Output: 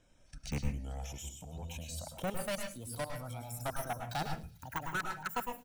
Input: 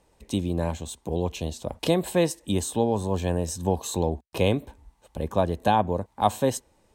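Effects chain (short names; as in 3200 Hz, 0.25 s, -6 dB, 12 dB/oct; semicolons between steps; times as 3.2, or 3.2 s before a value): speed glide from 59% -> 187%; reverb removal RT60 2 s; de-esser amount 100%; high shelf 3200 Hz +11 dB; comb 1.3 ms, depth 41%; level quantiser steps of 23 dB; soft clip -33 dBFS, distortion -3 dB; LFO notch square 1.9 Hz 370–4600 Hz; thin delay 0.221 s, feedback 70%, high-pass 4000 Hz, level -21.5 dB; on a send at -4 dB: reverb RT60 0.30 s, pre-delay 0.102 s; on the sum: gain +1.5 dB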